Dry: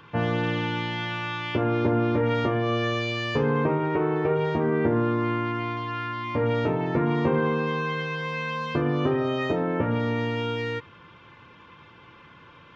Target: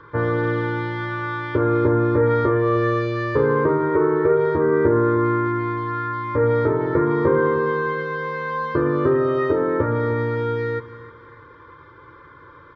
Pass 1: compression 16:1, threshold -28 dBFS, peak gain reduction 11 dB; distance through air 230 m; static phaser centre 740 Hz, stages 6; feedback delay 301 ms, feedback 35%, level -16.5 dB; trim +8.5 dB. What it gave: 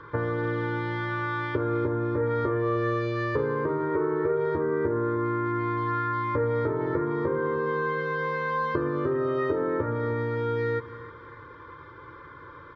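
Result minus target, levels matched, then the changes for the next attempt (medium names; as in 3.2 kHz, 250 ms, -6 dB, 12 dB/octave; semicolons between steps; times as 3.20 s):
compression: peak gain reduction +11 dB
remove: compression 16:1, threshold -28 dBFS, peak gain reduction 11 dB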